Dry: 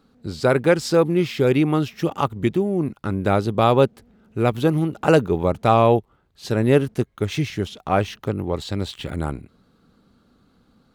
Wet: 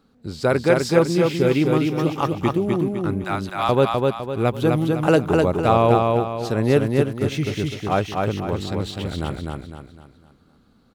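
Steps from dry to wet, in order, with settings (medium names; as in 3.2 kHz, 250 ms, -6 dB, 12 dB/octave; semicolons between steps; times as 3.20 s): 3.24–3.69 s: inverse Chebyshev high-pass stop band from 390 Hz, stop band 40 dB; feedback delay 253 ms, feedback 40%, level -3 dB; trim -1.5 dB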